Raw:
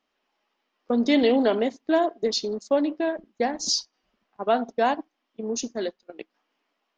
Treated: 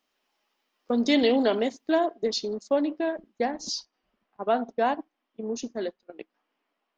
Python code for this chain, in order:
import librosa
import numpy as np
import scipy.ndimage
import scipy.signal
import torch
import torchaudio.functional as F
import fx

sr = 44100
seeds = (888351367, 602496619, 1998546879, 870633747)

y = fx.high_shelf(x, sr, hz=5100.0, db=fx.steps((0.0, 11.0), (1.94, -2.5), (3.45, -11.5)))
y = F.gain(torch.from_numpy(y), -2.0).numpy()